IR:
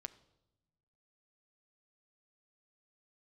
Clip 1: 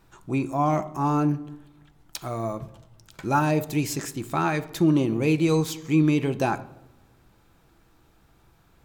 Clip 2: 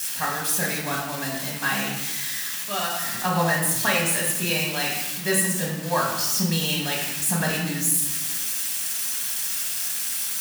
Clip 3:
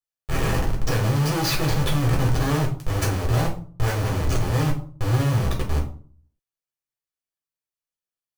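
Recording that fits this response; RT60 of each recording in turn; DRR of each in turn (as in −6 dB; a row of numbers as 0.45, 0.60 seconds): 1; 0.95, 1.2, 0.45 seconds; 10.5, −4.0, −1.5 decibels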